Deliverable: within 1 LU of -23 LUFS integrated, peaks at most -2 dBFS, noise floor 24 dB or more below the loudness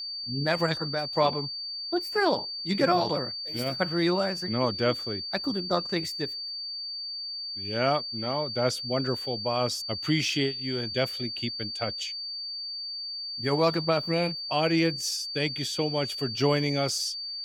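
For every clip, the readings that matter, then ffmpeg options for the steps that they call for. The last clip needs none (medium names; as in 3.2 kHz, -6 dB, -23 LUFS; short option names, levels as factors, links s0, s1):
steady tone 4.6 kHz; tone level -33 dBFS; loudness -28.0 LUFS; peak level -9.5 dBFS; loudness target -23.0 LUFS
-> -af "bandreject=f=4600:w=30"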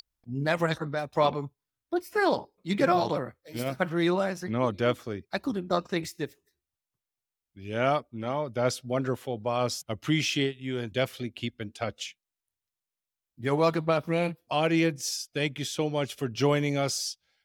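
steady tone not found; loudness -29.0 LUFS; peak level -10.0 dBFS; loudness target -23.0 LUFS
-> -af "volume=2"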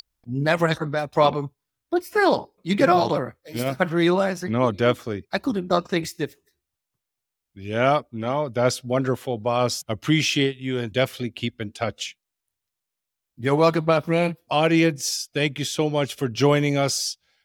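loudness -23.0 LUFS; peak level -3.5 dBFS; noise floor -84 dBFS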